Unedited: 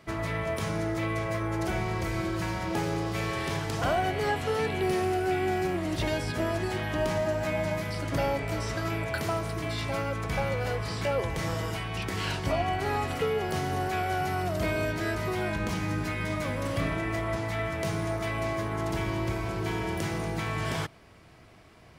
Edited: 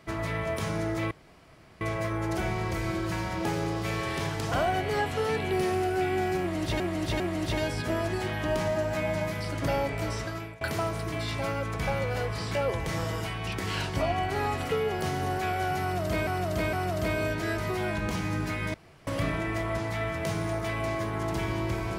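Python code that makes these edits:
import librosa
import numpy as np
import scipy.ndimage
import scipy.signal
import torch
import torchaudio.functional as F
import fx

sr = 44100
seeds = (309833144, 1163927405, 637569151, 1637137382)

y = fx.edit(x, sr, fx.insert_room_tone(at_s=1.11, length_s=0.7),
    fx.repeat(start_s=5.7, length_s=0.4, count=3),
    fx.fade_out_to(start_s=8.63, length_s=0.48, floor_db=-20.5),
    fx.repeat(start_s=14.31, length_s=0.46, count=3),
    fx.room_tone_fill(start_s=16.32, length_s=0.33), tone=tone)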